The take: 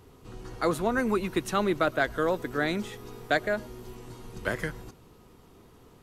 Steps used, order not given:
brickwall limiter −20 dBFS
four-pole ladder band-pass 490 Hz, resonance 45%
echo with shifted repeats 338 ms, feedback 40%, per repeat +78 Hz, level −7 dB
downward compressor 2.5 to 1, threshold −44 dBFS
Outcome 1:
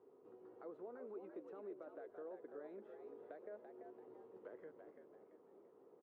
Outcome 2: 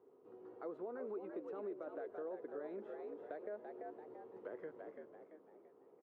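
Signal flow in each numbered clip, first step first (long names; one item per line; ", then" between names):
brickwall limiter, then downward compressor, then echo with shifted repeats, then four-pole ladder band-pass
brickwall limiter, then echo with shifted repeats, then four-pole ladder band-pass, then downward compressor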